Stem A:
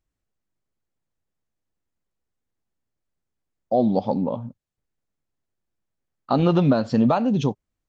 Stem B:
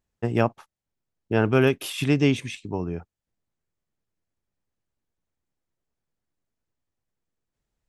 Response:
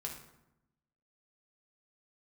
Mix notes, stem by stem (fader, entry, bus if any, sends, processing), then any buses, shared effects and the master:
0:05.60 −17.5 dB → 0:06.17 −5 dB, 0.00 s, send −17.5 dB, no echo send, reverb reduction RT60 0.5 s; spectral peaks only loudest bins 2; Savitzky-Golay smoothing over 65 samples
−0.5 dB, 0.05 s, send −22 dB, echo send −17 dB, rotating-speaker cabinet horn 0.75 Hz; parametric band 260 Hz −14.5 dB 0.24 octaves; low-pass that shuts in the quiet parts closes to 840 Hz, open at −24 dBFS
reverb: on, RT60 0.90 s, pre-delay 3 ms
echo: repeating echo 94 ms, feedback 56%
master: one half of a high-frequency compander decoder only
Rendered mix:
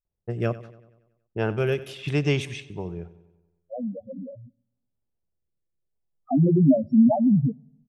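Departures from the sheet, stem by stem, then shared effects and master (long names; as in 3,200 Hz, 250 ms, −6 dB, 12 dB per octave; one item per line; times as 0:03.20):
stem A −17.5 dB → −8.0 dB
reverb return −6.5 dB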